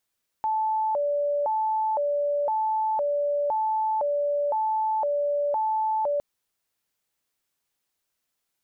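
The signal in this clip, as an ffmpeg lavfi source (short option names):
-f lavfi -i "aevalsrc='0.0794*sin(2*PI*(726*t+147/0.98*(0.5-abs(mod(0.98*t,1)-0.5))))':d=5.76:s=44100"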